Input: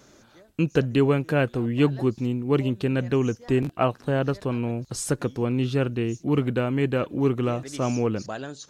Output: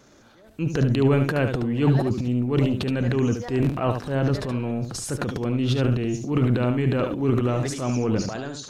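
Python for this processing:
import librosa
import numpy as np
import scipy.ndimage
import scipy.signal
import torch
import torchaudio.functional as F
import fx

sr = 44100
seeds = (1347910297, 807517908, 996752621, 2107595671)

p1 = fx.high_shelf(x, sr, hz=5100.0, db=-4.5)
p2 = fx.transient(p1, sr, attack_db=-7, sustain_db=11)
y = p2 + fx.echo_single(p2, sr, ms=73, db=-7.0, dry=0)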